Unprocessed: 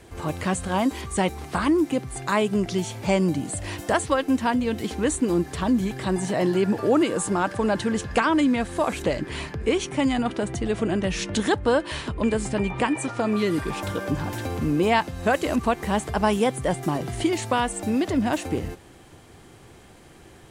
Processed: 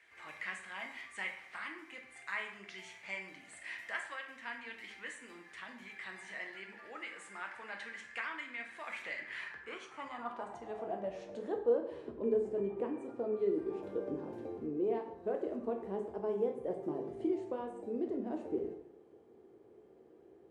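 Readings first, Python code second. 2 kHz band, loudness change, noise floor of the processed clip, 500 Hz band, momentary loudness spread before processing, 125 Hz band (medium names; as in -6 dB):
-11.5 dB, -15.0 dB, -60 dBFS, -12.0 dB, 6 LU, -27.0 dB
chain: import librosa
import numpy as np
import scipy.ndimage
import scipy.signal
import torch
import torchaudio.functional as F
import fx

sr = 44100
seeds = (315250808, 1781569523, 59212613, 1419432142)

y = fx.high_shelf(x, sr, hz=5800.0, db=7.0)
y = fx.rider(y, sr, range_db=3, speed_s=0.5)
y = fx.filter_sweep_bandpass(y, sr, from_hz=2000.0, to_hz=410.0, start_s=9.17, end_s=11.82, q=4.1)
y = fx.rev_plate(y, sr, seeds[0], rt60_s=0.68, hf_ratio=0.75, predelay_ms=0, drr_db=2.5)
y = y * librosa.db_to_amplitude(-6.5)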